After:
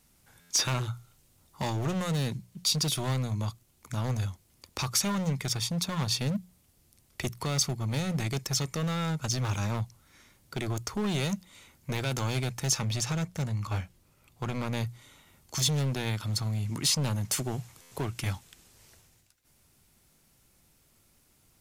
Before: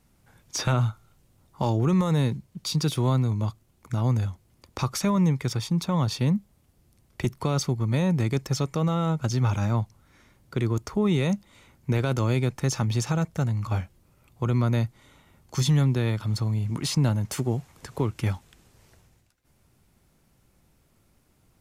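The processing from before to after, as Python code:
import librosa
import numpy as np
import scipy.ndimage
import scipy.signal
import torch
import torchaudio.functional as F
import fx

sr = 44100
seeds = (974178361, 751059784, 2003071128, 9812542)

y = fx.high_shelf(x, sr, hz=5600.0, db=-5.5, at=(12.77, 14.77))
y = np.clip(y, -10.0 ** (-22.0 / 20.0), 10.0 ** (-22.0 / 20.0))
y = fx.high_shelf(y, sr, hz=2300.0, db=10.5)
y = fx.hum_notches(y, sr, base_hz=60, count=3)
y = fx.buffer_glitch(y, sr, at_s=(0.4, 17.81), block=512, repeats=8)
y = y * 10.0 ** (-4.0 / 20.0)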